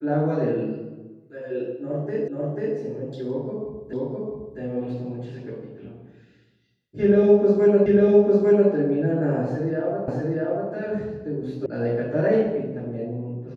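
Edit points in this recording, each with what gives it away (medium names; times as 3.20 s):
2.28 s: repeat of the last 0.49 s
3.93 s: repeat of the last 0.66 s
7.86 s: repeat of the last 0.85 s
10.08 s: repeat of the last 0.64 s
11.66 s: sound stops dead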